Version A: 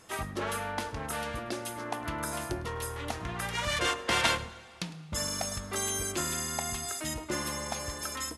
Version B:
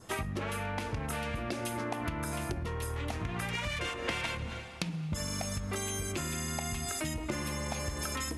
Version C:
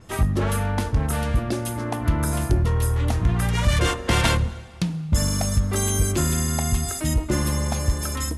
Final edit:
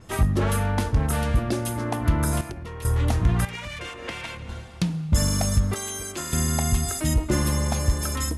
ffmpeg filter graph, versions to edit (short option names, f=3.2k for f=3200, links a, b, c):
-filter_complex "[1:a]asplit=2[a][b];[2:a]asplit=4[c][d][e][f];[c]atrim=end=2.412[g];[a]atrim=start=2.408:end=2.852[h];[d]atrim=start=2.848:end=3.452[i];[b]atrim=start=3.448:end=4.492[j];[e]atrim=start=4.488:end=5.742[k];[0:a]atrim=start=5.738:end=6.332[l];[f]atrim=start=6.328[m];[g][h]acrossfade=d=0.004:c1=hsin:c2=hsin[n];[n][i]acrossfade=d=0.004:c1=hsin:c2=hsin[o];[o][j]acrossfade=d=0.004:c1=hsin:c2=hsin[p];[p][k]acrossfade=d=0.004:c1=hsin:c2=hsin[q];[q][l]acrossfade=d=0.004:c1=hsin:c2=hsin[r];[r][m]acrossfade=d=0.004:c1=hsin:c2=hsin"